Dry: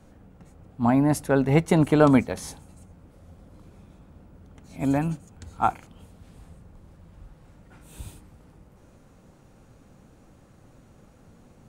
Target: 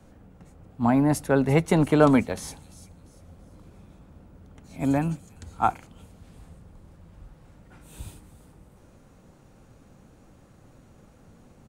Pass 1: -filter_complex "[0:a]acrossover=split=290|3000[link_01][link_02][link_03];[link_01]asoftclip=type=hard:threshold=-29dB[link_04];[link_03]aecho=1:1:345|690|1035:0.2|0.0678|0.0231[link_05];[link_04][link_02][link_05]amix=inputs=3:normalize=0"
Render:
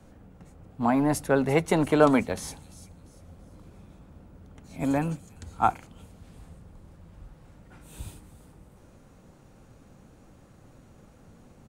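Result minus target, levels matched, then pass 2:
hard clipping: distortion +9 dB
-filter_complex "[0:a]acrossover=split=290|3000[link_01][link_02][link_03];[link_01]asoftclip=type=hard:threshold=-20dB[link_04];[link_03]aecho=1:1:345|690|1035:0.2|0.0678|0.0231[link_05];[link_04][link_02][link_05]amix=inputs=3:normalize=0"

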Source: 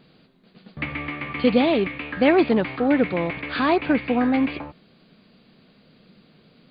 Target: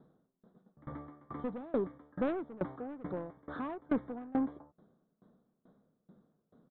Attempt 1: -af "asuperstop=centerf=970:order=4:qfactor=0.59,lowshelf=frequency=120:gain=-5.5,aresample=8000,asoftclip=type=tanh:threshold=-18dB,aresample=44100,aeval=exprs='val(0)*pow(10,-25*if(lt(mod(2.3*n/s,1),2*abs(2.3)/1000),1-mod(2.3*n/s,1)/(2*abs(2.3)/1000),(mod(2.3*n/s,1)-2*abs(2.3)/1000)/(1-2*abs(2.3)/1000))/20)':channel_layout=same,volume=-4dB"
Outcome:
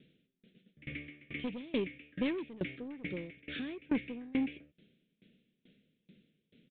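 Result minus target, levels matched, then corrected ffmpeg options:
1,000 Hz band −9.5 dB
-af "asuperstop=centerf=2600:order=4:qfactor=0.59,lowshelf=frequency=120:gain=-5.5,aresample=8000,asoftclip=type=tanh:threshold=-18dB,aresample=44100,aeval=exprs='val(0)*pow(10,-25*if(lt(mod(2.3*n/s,1),2*abs(2.3)/1000),1-mod(2.3*n/s,1)/(2*abs(2.3)/1000),(mod(2.3*n/s,1)-2*abs(2.3)/1000)/(1-2*abs(2.3)/1000))/20)':channel_layout=same,volume=-4dB"

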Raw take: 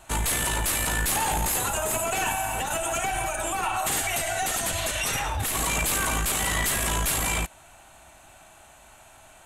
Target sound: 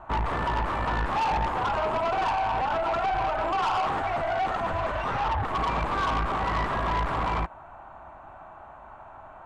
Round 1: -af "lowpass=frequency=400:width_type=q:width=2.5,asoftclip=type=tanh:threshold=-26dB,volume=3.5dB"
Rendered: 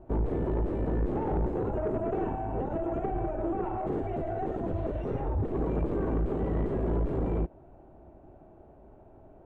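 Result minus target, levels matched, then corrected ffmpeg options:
1,000 Hz band −8.5 dB
-af "lowpass=frequency=1100:width_type=q:width=2.5,asoftclip=type=tanh:threshold=-26dB,volume=3.5dB"

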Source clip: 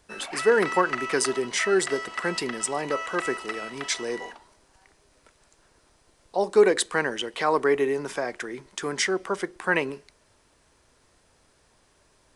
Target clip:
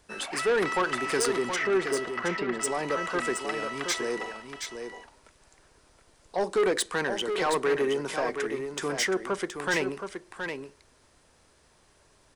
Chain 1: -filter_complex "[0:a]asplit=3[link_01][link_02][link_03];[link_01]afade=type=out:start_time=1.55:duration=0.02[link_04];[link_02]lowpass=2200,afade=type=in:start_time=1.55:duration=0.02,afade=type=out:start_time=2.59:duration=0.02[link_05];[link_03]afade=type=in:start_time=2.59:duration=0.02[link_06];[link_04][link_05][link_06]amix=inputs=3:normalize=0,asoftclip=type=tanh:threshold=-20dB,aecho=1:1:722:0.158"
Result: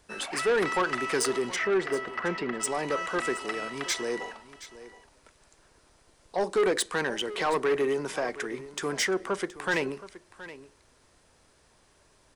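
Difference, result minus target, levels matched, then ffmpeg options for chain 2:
echo-to-direct −9 dB
-filter_complex "[0:a]asplit=3[link_01][link_02][link_03];[link_01]afade=type=out:start_time=1.55:duration=0.02[link_04];[link_02]lowpass=2200,afade=type=in:start_time=1.55:duration=0.02,afade=type=out:start_time=2.59:duration=0.02[link_05];[link_03]afade=type=in:start_time=2.59:duration=0.02[link_06];[link_04][link_05][link_06]amix=inputs=3:normalize=0,asoftclip=type=tanh:threshold=-20dB,aecho=1:1:722:0.447"

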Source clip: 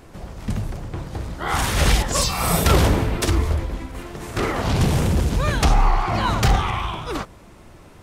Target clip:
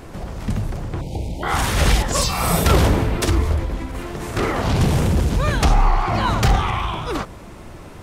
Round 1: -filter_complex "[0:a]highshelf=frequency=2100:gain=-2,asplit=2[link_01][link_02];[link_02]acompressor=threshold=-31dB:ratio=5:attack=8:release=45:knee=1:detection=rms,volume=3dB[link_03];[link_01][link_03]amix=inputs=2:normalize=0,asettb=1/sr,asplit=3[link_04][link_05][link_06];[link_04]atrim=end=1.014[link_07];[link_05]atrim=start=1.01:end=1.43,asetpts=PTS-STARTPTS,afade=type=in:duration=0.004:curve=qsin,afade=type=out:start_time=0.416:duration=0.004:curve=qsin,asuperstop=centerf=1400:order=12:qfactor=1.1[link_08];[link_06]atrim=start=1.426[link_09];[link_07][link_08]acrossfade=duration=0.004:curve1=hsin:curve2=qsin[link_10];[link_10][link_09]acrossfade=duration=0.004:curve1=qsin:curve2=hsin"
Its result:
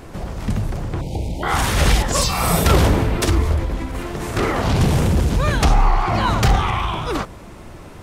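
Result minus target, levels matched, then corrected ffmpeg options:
downward compressor: peak gain reduction −5 dB
-filter_complex "[0:a]highshelf=frequency=2100:gain=-2,asplit=2[link_01][link_02];[link_02]acompressor=threshold=-37dB:ratio=5:attack=8:release=45:knee=1:detection=rms,volume=3dB[link_03];[link_01][link_03]amix=inputs=2:normalize=0,asettb=1/sr,asplit=3[link_04][link_05][link_06];[link_04]atrim=end=1.014[link_07];[link_05]atrim=start=1.01:end=1.43,asetpts=PTS-STARTPTS,afade=type=in:duration=0.004:curve=qsin,afade=type=out:start_time=0.416:duration=0.004:curve=qsin,asuperstop=centerf=1400:order=12:qfactor=1.1[link_08];[link_06]atrim=start=1.426[link_09];[link_07][link_08]acrossfade=duration=0.004:curve1=hsin:curve2=qsin[link_10];[link_10][link_09]acrossfade=duration=0.004:curve1=qsin:curve2=hsin"

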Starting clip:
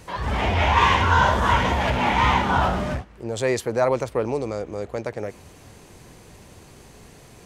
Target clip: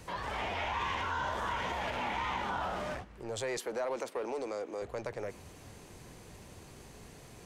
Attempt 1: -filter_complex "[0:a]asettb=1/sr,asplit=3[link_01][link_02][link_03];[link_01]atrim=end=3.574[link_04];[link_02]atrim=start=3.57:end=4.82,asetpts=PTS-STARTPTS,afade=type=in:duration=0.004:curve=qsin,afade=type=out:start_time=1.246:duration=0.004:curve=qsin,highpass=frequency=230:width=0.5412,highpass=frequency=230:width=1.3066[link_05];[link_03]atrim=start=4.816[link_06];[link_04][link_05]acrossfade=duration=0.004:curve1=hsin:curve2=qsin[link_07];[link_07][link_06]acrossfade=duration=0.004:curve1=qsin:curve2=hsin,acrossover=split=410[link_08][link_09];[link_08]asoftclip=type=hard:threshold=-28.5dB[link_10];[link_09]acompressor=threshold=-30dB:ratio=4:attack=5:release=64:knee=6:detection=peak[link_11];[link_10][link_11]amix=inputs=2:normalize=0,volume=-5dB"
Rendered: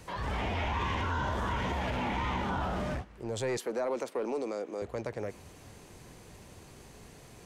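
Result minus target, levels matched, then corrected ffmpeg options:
hard clipping: distortion −5 dB
-filter_complex "[0:a]asettb=1/sr,asplit=3[link_01][link_02][link_03];[link_01]atrim=end=3.574[link_04];[link_02]atrim=start=3.57:end=4.82,asetpts=PTS-STARTPTS,afade=type=in:duration=0.004:curve=qsin,afade=type=out:start_time=1.246:duration=0.004:curve=qsin,highpass=frequency=230:width=0.5412,highpass=frequency=230:width=1.3066[link_05];[link_03]atrim=start=4.816[link_06];[link_04][link_05]acrossfade=duration=0.004:curve1=hsin:curve2=qsin[link_07];[link_07][link_06]acrossfade=duration=0.004:curve1=qsin:curve2=hsin,acrossover=split=410[link_08][link_09];[link_08]asoftclip=type=hard:threshold=-40dB[link_10];[link_09]acompressor=threshold=-30dB:ratio=4:attack=5:release=64:knee=6:detection=peak[link_11];[link_10][link_11]amix=inputs=2:normalize=0,volume=-5dB"

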